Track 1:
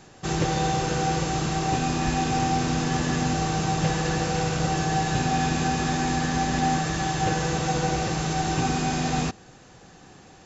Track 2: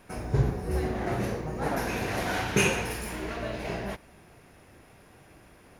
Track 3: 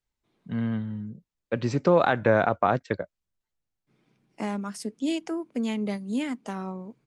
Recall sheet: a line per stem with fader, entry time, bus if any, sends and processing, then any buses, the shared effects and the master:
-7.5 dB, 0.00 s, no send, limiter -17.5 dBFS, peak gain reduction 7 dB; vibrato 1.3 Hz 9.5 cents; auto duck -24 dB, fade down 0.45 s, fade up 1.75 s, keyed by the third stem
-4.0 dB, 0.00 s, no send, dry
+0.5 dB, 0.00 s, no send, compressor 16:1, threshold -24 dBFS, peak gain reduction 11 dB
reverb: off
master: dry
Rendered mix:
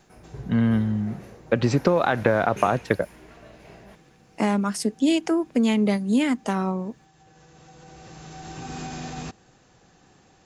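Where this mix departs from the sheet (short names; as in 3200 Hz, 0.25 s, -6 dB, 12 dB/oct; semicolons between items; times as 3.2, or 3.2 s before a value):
stem 2 -4.0 dB -> -14.0 dB; stem 3 +0.5 dB -> +9.0 dB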